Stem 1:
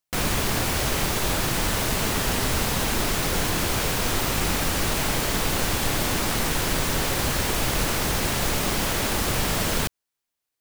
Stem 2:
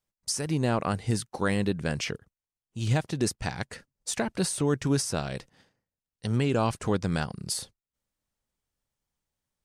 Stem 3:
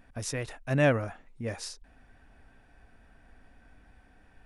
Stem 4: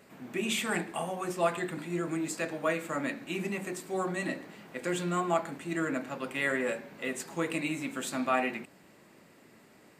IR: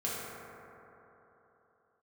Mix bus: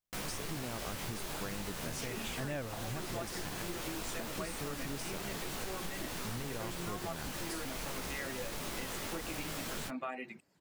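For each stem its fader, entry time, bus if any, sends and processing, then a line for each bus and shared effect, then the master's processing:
-8.0 dB, 0.00 s, no send, peaking EQ 76 Hz -7 dB 0.97 oct; detune thickener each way 43 cents
-10.0 dB, 0.00 s, no send, none
-3.0 dB, 1.70 s, no send, none
-5.5 dB, 1.75 s, no send, reverb removal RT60 0.65 s; treble shelf 10 kHz -9.5 dB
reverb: none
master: compression 6:1, threshold -36 dBFS, peak gain reduction 14 dB

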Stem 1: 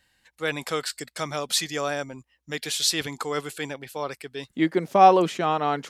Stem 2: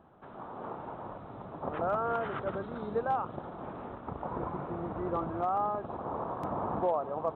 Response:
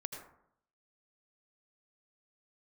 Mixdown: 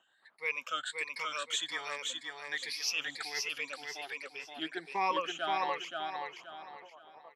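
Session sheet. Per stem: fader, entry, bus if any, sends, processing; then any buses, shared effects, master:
-9.5 dB, 0.00 s, no send, echo send -3.5 dB, drifting ripple filter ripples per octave 0.86, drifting +1.3 Hz, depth 24 dB
-5.0 dB, 0.00 s, no send, no echo send, compression, threshold -35 dBFS, peak gain reduction 10.5 dB; tremolo of two beating tones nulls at 9.2 Hz; auto duck -19 dB, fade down 0.60 s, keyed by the first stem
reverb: none
echo: feedback delay 525 ms, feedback 32%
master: band-pass filter 2.3 kHz, Q 0.96

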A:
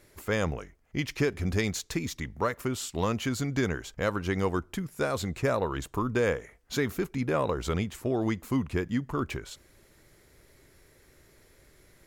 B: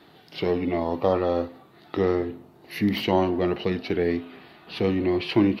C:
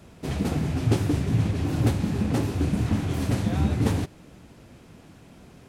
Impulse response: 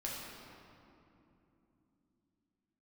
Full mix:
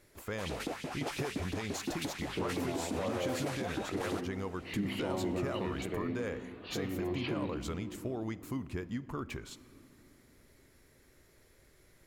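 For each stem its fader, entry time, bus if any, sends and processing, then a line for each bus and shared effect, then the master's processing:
-5.5 dB, 0.00 s, send -16.5 dB, compression 2.5:1, threshold -31 dBFS, peak gain reduction 7 dB
-9.5 dB, 1.95 s, send -5.5 dB, low-pass 3.6 kHz; compression 3:1, threshold -27 dBFS, peak gain reduction 9.5 dB; phaser 0.34 Hz, delay 2.2 ms, feedback 29%
-5.5 dB, 0.15 s, no send, LFO high-pass saw up 5.8 Hz 250–4000 Hz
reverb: on, RT60 3.0 s, pre-delay 3 ms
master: peak limiter -25 dBFS, peak gain reduction 9 dB

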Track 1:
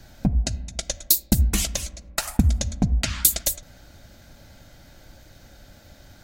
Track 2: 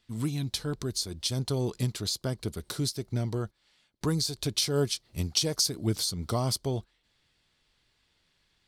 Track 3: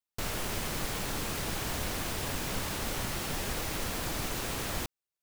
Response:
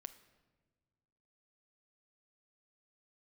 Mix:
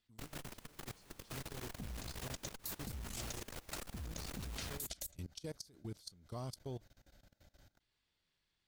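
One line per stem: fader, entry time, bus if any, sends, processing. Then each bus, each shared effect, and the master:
-14.5 dB, 1.55 s, no bus, no send, none
-11.0 dB, 0.00 s, bus A, no send, none
-3.5 dB, 0.00 s, bus A, no send, none
bus A: 0.0 dB, peak limiter -33 dBFS, peak gain reduction 10.5 dB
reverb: none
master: level held to a coarse grid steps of 21 dB; transformer saturation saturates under 230 Hz

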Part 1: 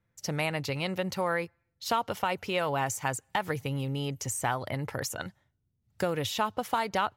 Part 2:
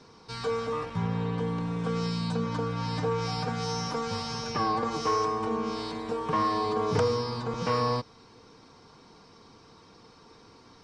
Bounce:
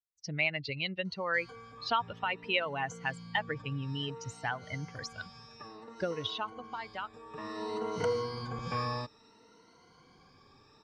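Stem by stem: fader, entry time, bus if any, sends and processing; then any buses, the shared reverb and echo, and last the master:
6.05 s -2.5 dB -> 6.63 s -11.5 dB, 0.00 s, no send, expander on every frequency bin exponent 2; low-pass 4.1 kHz 24 dB/octave; treble shelf 2 kHz +11.5 dB
-10.0 dB, 1.05 s, no send, drifting ripple filter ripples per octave 1.9, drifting +0.58 Hz, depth 16 dB; auto duck -12 dB, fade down 1.70 s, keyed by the first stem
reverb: none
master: peaking EQ 2 kHz +3 dB 1.1 oct

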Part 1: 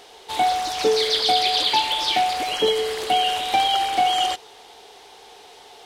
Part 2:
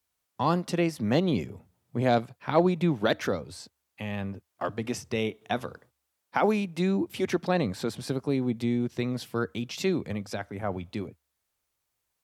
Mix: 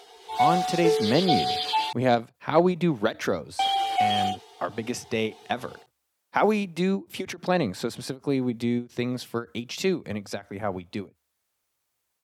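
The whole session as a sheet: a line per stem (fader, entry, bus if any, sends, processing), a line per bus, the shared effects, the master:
-1.0 dB, 0.00 s, muted 1.93–3.59 s, no send, harmonic-percussive separation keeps harmonic; auto duck -7 dB, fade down 1.05 s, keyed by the second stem
-2.0 dB, 0.00 s, no send, none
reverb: none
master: bass shelf 87 Hz -10.5 dB; level rider gain up to 5 dB; endings held to a fixed fall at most 260 dB/s

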